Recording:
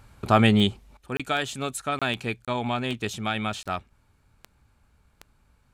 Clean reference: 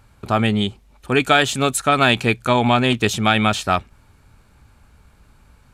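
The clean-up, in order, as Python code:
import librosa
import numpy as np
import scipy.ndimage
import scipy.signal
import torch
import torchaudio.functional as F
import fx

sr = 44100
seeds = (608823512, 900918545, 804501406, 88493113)

y = fx.fix_declick_ar(x, sr, threshold=10.0)
y = fx.fix_interpolate(y, sr, at_s=(1.17, 1.99, 2.45, 3.63), length_ms=26.0)
y = fx.fix_level(y, sr, at_s=0.97, step_db=11.5)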